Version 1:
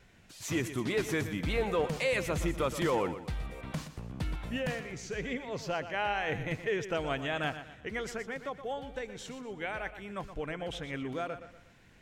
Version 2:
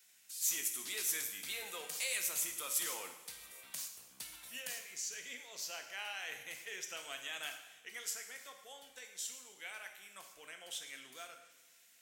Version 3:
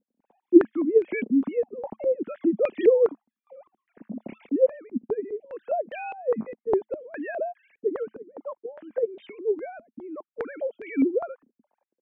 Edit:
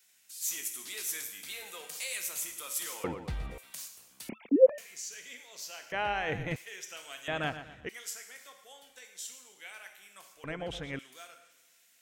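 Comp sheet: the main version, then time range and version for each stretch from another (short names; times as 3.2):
2
3.04–3.58 from 1
4.29–4.78 from 3
5.92–6.56 from 1
7.28–7.89 from 1
10.44–10.99 from 1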